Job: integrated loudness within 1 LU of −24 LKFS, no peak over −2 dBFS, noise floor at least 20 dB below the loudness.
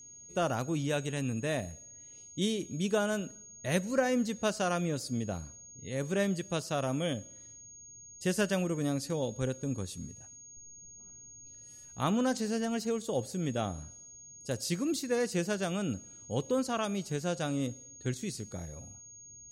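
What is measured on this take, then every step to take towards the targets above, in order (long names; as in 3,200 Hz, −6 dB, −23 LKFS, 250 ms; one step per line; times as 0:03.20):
interfering tone 6,600 Hz; level of the tone −49 dBFS; integrated loudness −33.0 LKFS; sample peak −15.0 dBFS; target loudness −24.0 LKFS
→ notch filter 6,600 Hz, Q 30
level +9 dB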